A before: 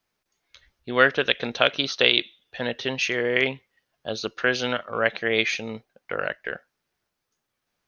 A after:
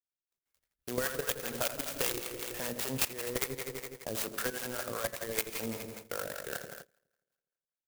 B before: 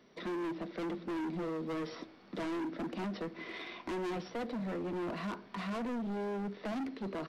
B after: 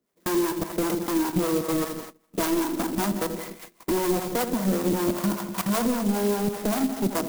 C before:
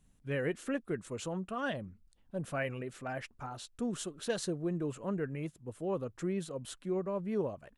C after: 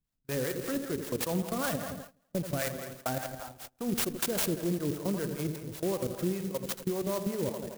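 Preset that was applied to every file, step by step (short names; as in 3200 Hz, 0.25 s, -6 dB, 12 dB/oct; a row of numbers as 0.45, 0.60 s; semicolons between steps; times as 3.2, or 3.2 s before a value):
high shelf 3100 Hz +9 dB; in parallel at -5 dB: wrapped overs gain 13.5 dB; on the sum: level quantiser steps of 17 dB; hard clip -11 dBFS; dark delay 83 ms, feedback 69%, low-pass 3200 Hz, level -9 dB; compressor 4:1, threshold -33 dBFS; bell 1900 Hz -2.5 dB 1.2 oct; harmonic tremolo 5.1 Hz, depth 70%, crossover 530 Hz; de-hum 215.8 Hz, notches 9; gate -51 dBFS, range -22 dB; clock jitter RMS 0.085 ms; normalise peaks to -12 dBFS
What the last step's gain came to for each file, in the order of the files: +4.5, +15.5, +9.0 dB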